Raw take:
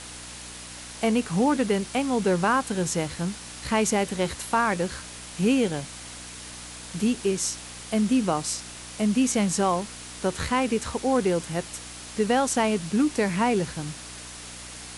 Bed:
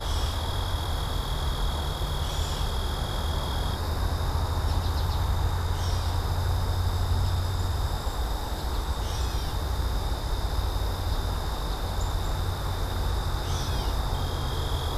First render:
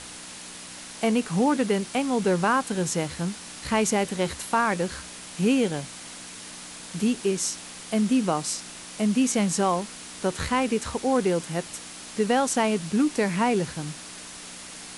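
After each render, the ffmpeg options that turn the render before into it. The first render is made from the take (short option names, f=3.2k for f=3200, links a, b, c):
-af "bandreject=f=60:t=h:w=4,bandreject=f=120:t=h:w=4"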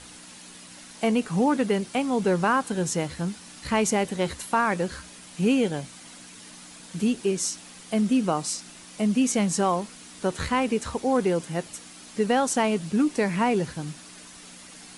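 -af "afftdn=nr=7:nf=-41"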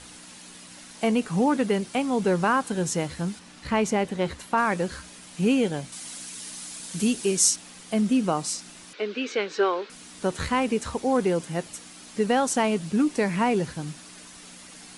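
-filter_complex "[0:a]asettb=1/sr,asplit=3[a][b][c];[a]atrim=end=3.394[d];[b]atrim=start=3.39:end=4.58,asetpts=PTS-STARTPTS,afade=t=in:d=0.004:c=qsin,afade=t=out:st=1.186:d=0.004:c=qsin,highshelf=f=5.7k:g=-11[e];[c]atrim=start=4.576[f];[d][e]acrossfade=d=0.004:c1=hsin:c2=qsin[g];[g][f]acrossfade=d=0.004:c1=qsin:c2=hsin,asettb=1/sr,asplit=3[h][i][j];[h]atrim=end=5.924[k];[i]atrim=start=5.92:end=7.56,asetpts=PTS-STARTPTS,afade=t=in:d=0.004:c=qsin,afade=t=out:st=1.636:d=0.004:c=qsin,highshelf=f=4k:g=11[l];[j]atrim=start=7.556[m];[k][l]acrossfade=d=0.004:c1=hsin:c2=qsin[n];[n][m]acrossfade=d=0.004:c1=qsin:c2=hsin,asettb=1/sr,asplit=3[o][p][q];[o]atrim=end=8.934[r];[p]atrim=start=8.93:end=9.9,asetpts=PTS-STARTPTS,afade=t=in:d=0.004:c=qsin,afade=t=out:st=0.966:d=0.004:c=qsin,highpass=f=350:w=0.5412,highpass=f=350:w=1.3066,equalizer=f=410:t=q:w=4:g=9,equalizer=f=700:t=q:w=4:g=-9,equalizer=f=1k:t=q:w=4:g=-3,equalizer=f=1.5k:t=q:w=4:g=9,equalizer=f=2.4k:t=q:w=4:g=4,equalizer=f=3.9k:t=q:w=4:g=5,lowpass=f=4.4k:w=0.5412,lowpass=f=4.4k:w=1.3066[s];[q]atrim=start=9.896[t];[r][s]acrossfade=d=0.004:c1=hsin:c2=qsin[u];[u][t]acrossfade=d=0.004:c1=qsin:c2=hsin"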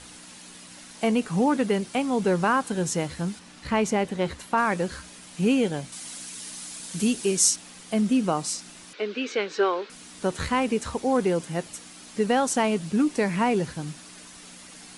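-af anull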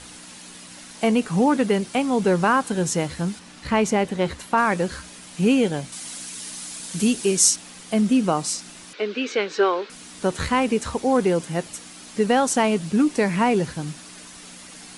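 -af "volume=3.5dB"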